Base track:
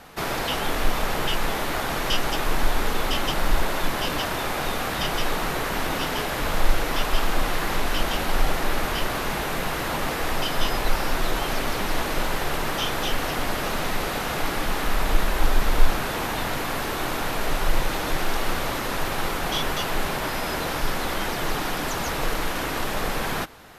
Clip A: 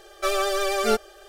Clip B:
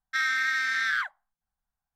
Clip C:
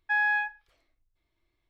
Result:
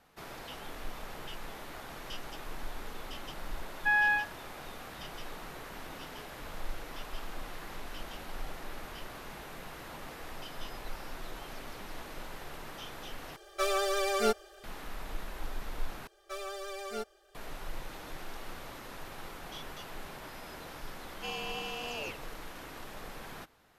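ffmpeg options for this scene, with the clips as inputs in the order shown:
-filter_complex "[1:a]asplit=2[a][b];[0:a]volume=-18.5dB[c];[2:a]aeval=exprs='val(0)*sin(2*PI*1100*n/s)':c=same[d];[c]asplit=3[e][f][g];[e]atrim=end=13.364[h];[a]atrim=end=1.28,asetpts=PTS-STARTPTS,volume=-6dB[i];[f]atrim=start=14.636:end=16.074[j];[b]atrim=end=1.28,asetpts=PTS-STARTPTS,volume=-16.5dB[k];[g]atrim=start=17.346[l];[3:a]atrim=end=1.69,asetpts=PTS-STARTPTS,volume=-1dB,afade=t=in:d=0.004:c=hsin,afade=t=out:st=1.686:d=0.004:c=hsin,adelay=3760[m];[d]atrim=end=1.95,asetpts=PTS-STARTPTS,volume=-9.5dB,afade=t=in:d=0.004:c=hsin,afade=t=out:st=1.946:d=0.004:c=hsin,adelay=21090[n];[h][i]acrossfade=d=0.004:c1=hsin:c2=hsin[o];[o][j]acrossfade=d=0.004:c1=hsin:c2=hsin[p];[p][k]acrossfade=d=0.004:c1=hsin:c2=hsin[q];[q][l]acrossfade=d=0.004:c1=hsin:c2=hsin[r];[r][m][n]amix=inputs=3:normalize=0"

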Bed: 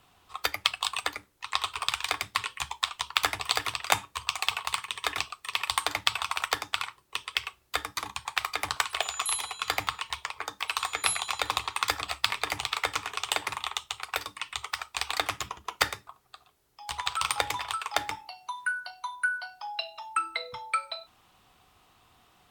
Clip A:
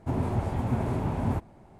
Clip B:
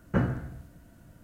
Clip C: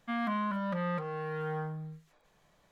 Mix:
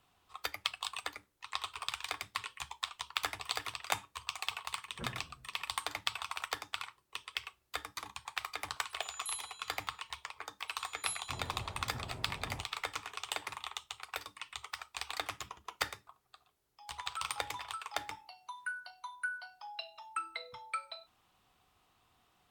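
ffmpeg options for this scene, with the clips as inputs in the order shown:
-filter_complex "[0:a]volume=-9.5dB[a];[2:a]asplit=2[b][c];[c]adelay=7.3,afreqshift=-2.9[d];[b][d]amix=inputs=2:normalize=1[e];[1:a]equalizer=f=240:t=o:w=1.3:g=-8[f];[e]atrim=end=1.23,asetpts=PTS-STARTPTS,volume=-16.5dB,afade=t=in:d=0.004:c=hsin,afade=t=out:st=1.226:d=0.004:c=hsin,adelay=213885S[g];[f]atrim=end=1.79,asetpts=PTS-STARTPTS,volume=-15dB,afade=t=in:d=0.004:c=hsin,afade=t=out:st=1.786:d=0.004:c=hsin,adelay=11230[h];[a][g][h]amix=inputs=3:normalize=0"

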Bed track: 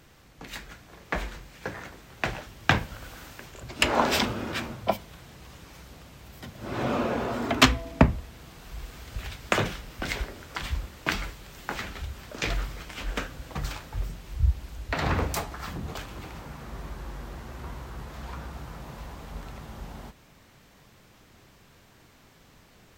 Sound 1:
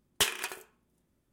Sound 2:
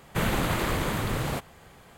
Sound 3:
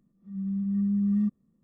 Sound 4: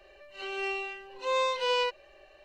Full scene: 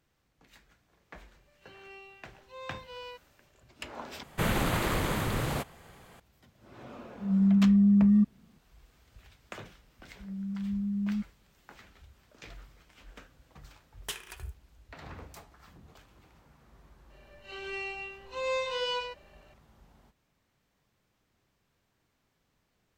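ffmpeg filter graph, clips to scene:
-filter_complex "[4:a]asplit=2[a][b];[3:a]asplit=2[c][d];[0:a]volume=-19.5dB[e];[a]equalizer=f=6.6k:w=3.7:g=-4.5[f];[c]alimiter=level_in=23.5dB:limit=-1dB:release=50:level=0:latency=1[g];[d]lowshelf=f=270:g=11.5[h];[1:a]acrusher=bits=9:mix=0:aa=0.000001[i];[b]aecho=1:1:37.9|134.1:0.631|0.501[j];[e]asplit=2[k][l];[k]atrim=end=4.234[m];[2:a]atrim=end=1.97,asetpts=PTS-STARTPTS,volume=-2dB[n];[l]atrim=start=6.196[o];[f]atrim=end=2.44,asetpts=PTS-STARTPTS,volume=-16.5dB,afade=t=in:d=0.004:c=hsin,afade=t=out:st=2.436:d=0.004:c=hsin,adelay=1270[p];[g]atrim=end=1.63,asetpts=PTS-STARTPTS,volume=-16dB,afade=t=in:d=0.004:c=hsin,afade=t=out:st=1.626:d=0.004:c=hsin,adelay=6950[q];[h]atrim=end=1.63,asetpts=PTS-STARTPTS,volume=-13.5dB,afade=t=in:d=0.004:c=hsin,afade=t=out:st=1.626:d=0.004:c=hsin,adelay=9930[r];[i]atrim=end=1.32,asetpts=PTS-STARTPTS,volume=-11dB,afade=t=in:d=0.004:c=hsin,afade=t=out:st=1.316:d=0.004:c=hsin,adelay=13880[s];[j]atrim=end=2.44,asetpts=PTS-STARTPTS,volume=-5.5dB,afade=t=in:d=0.004:c=hsin,afade=t=out:st=2.436:d=0.004:c=hsin,adelay=17100[t];[m][n]acrossfade=d=0.004:c1=hsin:c2=hsin[u];[u][o]acrossfade=d=0.004:c1=hsin:c2=hsin[v];[v][p][q][r][s][t]amix=inputs=6:normalize=0"

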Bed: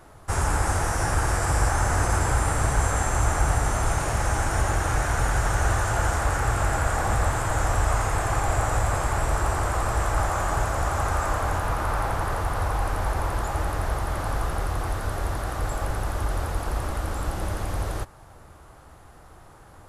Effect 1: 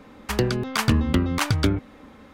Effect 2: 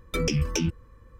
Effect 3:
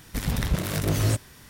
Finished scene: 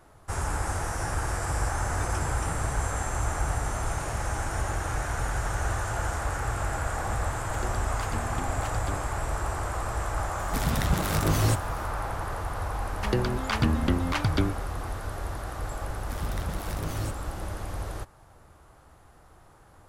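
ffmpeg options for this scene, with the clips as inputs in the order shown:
-filter_complex "[1:a]asplit=2[a][b];[3:a]asplit=2[c][d];[0:a]volume=-6dB[e];[b]acrossover=split=5400[f][g];[g]acompressor=threshold=-44dB:ratio=4:attack=1:release=60[h];[f][h]amix=inputs=2:normalize=0[i];[2:a]atrim=end=1.19,asetpts=PTS-STARTPTS,volume=-18dB,afade=t=in:d=0.004:c=hsin,afade=t=out:st=1.186:d=0.004:c=hsin,adelay=1870[j];[a]atrim=end=2.33,asetpts=PTS-STARTPTS,volume=-17.5dB,afade=t=in:d=0.004:c=hsin,afade=t=out:st=2.326:d=0.004:c=hsin,adelay=7240[k];[c]atrim=end=1.49,asetpts=PTS-STARTPTS,volume=-0.5dB,afade=t=in:d=0.004:c=hsin,afade=t=out:st=1.486:d=0.004:c=hsin,adelay=10390[l];[i]atrim=end=2.33,asetpts=PTS-STARTPTS,volume=-4.5dB,afade=t=in:d=0.004:c=hsin,afade=t=out:st=2.326:d=0.004:c=hsin,adelay=12740[m];[d]atrim=end=1.49,asetpts=PTS-STARTPTS,volume=-10.5dB,afade=t=in:d=0.004:c=hsin,afade=t=out:st=1.486:d=0.004:c=hsin,adelay=15950[n];[e][j][k][l][m][n]amix=inputs=6:normalize=0"

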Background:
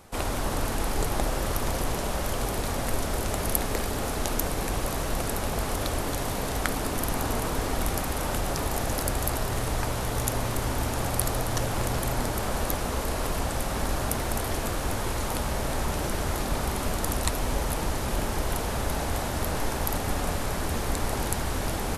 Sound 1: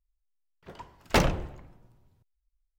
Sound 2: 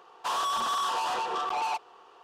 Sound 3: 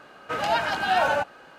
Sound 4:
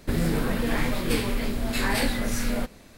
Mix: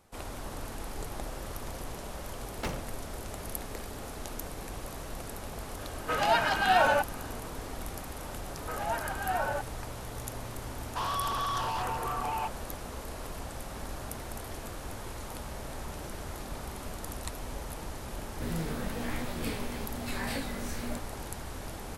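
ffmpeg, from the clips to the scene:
-filter_complex "[3:a]asplit=2[a][b];[0:a]volume=-11.5dB[c];[b]lowpass=2k[d];[2:a]afwtdn=0.0112[e];[4:a]flanger=delay=15.5:depth=4.8:speed=1.1[f];[1:a]atrim=end=2.78,asetpts=PTS-STARTPTS,volume=-13.5dB,afade=t=in:d=0.004:c=hsin,afade=t=out:st=2.776:d=0.004:c=hsin,adelay=1490[g];[a]atrim=end=1.58,asetpts=PTS-STARTPTS,volume=-1.5dB,afade=t=in:d=0.004:c=hsin,afade=t=out:st=1.576:d=0.004:c=hsin,adelay=5790[h];[d]atrim=end=1.58,asetpts=PTS-STARTPTS,volume=-9dB,afade=t=in:d=0.004:c=hsin,afade=t=out:st=1.576:d=0.004:c=hsin,adelay=8380[i];[e]atrim=end=2.23,asetpts=PTS-STARTPTS,volume=-3.5dB,afade=t=in:d=0.004:c=hsin,afade=t=out:st=2.226:d=0.004:c=hsin,adelay=10710[j];[f]atrim=end=2.97,asetpts=PTS-STARTPTS,volume=-7.5dB,afade=t=in:d=0.004:c=hsin,afade=t=out:st=2.966:d=0.004:c=hsin,adelay=18330[k];[c][g][h][i][j][k]amix=inputs=6:normalize=0"

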